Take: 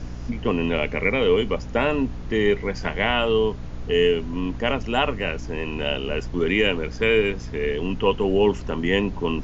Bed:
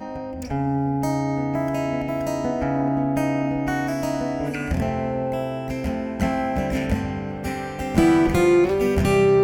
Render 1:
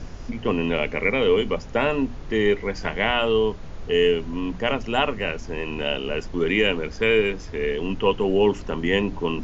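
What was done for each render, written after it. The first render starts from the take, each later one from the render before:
mains-hum notches 60/120/180/240/300 Hz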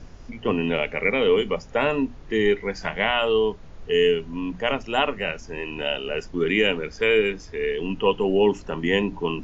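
noise reduction from a noise print 7 dB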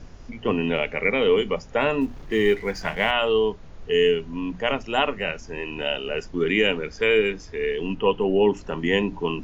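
0:02.01–0:03.11: mu-law and A-law mismatch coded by mu
0:07.95–0:08.57: low-pass filter 3,300 Hz 6 dB per octave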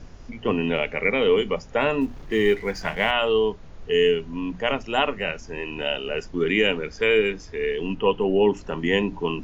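no processing that can be heard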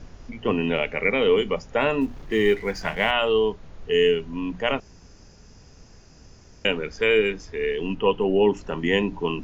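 0:04.80–0:06.65: fill with room tone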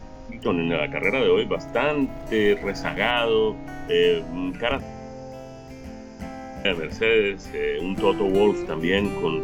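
mix in bed −13 dB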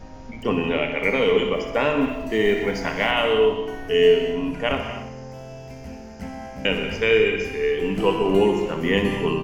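repeating echo 62 ms, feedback 57%, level −10.5 dB
reverb whose tail is shaped and stops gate 290 ms flat, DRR 6 dB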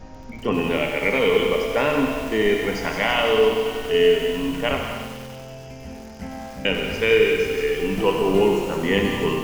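delay with a high-pass on its return 165 ms, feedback 70%, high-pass 4,700 Hz, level −4 dB
feedback echo at a low word length 95 ms, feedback 80%, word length 6 bits, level −9 dB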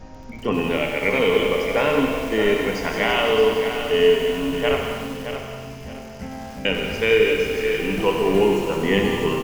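repeating echo 620 ms, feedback 28%, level −9 dB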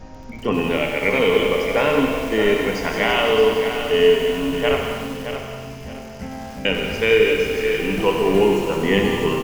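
level +1.5 dB

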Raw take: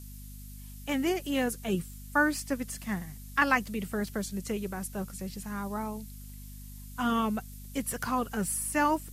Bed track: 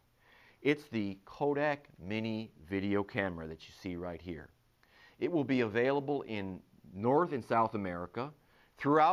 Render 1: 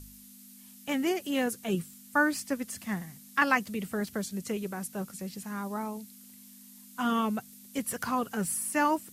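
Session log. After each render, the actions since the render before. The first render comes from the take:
hum removal 50 Hz, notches 3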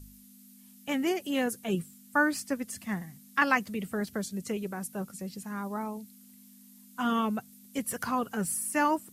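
broadband denoise 6 dB, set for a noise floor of −52 dBFS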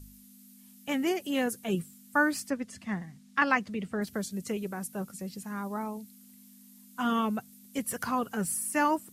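0:02.50–0:04.02: high-frequency loss of the air 74 metres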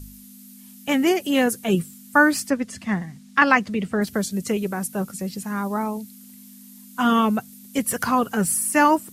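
level +9.5 dB
brickwall limiter −3 dBFS, peak gain reduction 1 dB

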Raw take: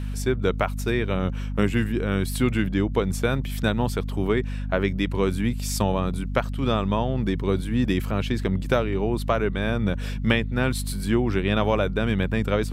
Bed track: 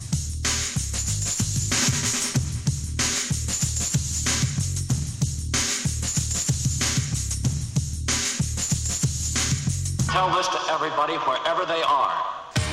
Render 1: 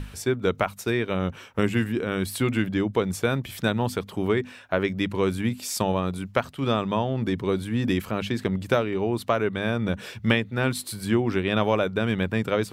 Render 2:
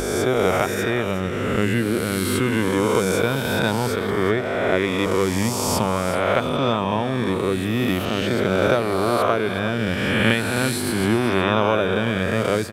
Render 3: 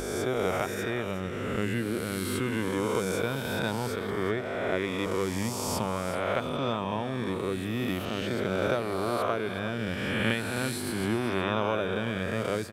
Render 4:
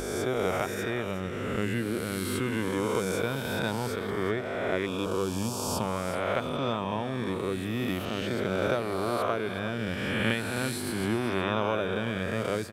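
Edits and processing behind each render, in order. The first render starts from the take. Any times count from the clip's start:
mains-hum notches 50/100/150/200/250 Hz
peak hold with a rise ahead of every peak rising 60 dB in 2.24 s; single-tap delay 368 ms −12.5 dB
level −9 dB
0:04.86–0:05.81: Butterworth band-reject 2,000 Hz, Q 2.5

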